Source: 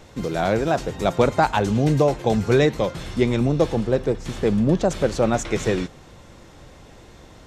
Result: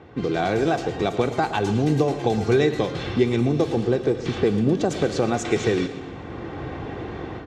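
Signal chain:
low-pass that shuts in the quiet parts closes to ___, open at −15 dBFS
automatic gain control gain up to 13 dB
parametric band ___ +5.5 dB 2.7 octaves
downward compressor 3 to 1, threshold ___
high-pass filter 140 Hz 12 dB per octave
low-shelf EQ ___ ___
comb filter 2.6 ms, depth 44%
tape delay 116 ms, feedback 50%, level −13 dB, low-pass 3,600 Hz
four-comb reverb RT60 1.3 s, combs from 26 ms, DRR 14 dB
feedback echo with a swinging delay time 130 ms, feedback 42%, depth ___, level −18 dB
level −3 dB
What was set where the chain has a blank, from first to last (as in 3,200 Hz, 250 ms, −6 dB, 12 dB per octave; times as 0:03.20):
1,700 Hz, 3,200 Hz, −22 dBFS, 340 Hz, +11 dB, 176 cents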